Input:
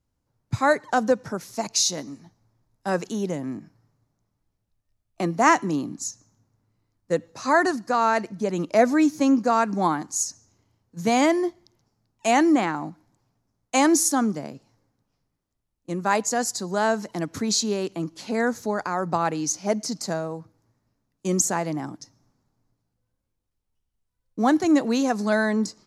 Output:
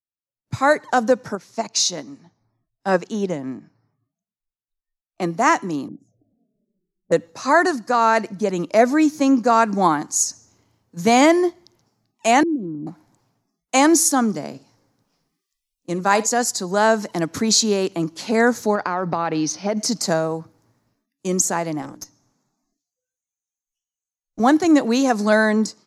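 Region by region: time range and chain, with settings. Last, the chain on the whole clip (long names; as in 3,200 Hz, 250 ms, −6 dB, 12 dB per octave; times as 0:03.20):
0:01.35–0:05.22: high-frequency loss of the air 56 metres + expander for the loud parts, over −35 dBFS
0:05.88–0:07.12: elliptic low-pass filter 700 Hz + flanger swept by the level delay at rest 5.5 ms, full sweep at −33.5 dBFS
0:12.43–0:12.87: inverse Chebyshev low-pass filter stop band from 730 Hz + downward compressor 2 to 1, threshold −28 dBFS
0:14.28–0:16.27: parametric band 5,200 Hz +3 dB 0.75 octaves + flutter between parallel walls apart 10.3 metres, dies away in 0.21 s
0:18.75–0:19.77: Savitzky-Golay smoothing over 15 samples + downward compressor 8 to 1, threshold −24 dBFS
0:21.82–0:24.40: parametric band 6,500 Hz +9 dB 0.31 octaves + mains-hum notches 60/120/180/240/300/360/420/480 Hz + tube saturation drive 30 dB, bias 0.75
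whole clip: low-shelf EQ 97 Hz −10 dB; automatic gain control gain up to 9.5 dB; noise reduction from a noise print of the clip's start 28 dB; level −1 dB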